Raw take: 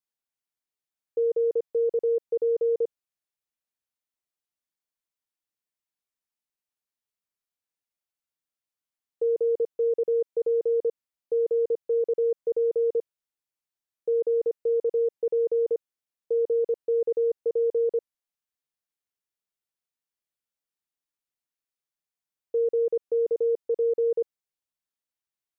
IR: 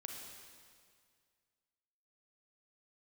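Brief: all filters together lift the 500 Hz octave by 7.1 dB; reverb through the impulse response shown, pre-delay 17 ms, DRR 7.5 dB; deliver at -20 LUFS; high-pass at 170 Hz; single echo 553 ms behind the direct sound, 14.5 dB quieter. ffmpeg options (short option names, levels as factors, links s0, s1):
-filter_complex "[0:a]highpass=170,equalizer=f=500:t=o:g=7.5,aecho=1:1:553:0.188,asplit=2[s0][s1];[1:a]atrim=start_sample=2205,adelay=17[s2];[s1][s2]afir=irnorm=-1:irlink=0,volume=0.596[s3];[s0][s3]amix=inputs=2:normalize=0,volume=0.841"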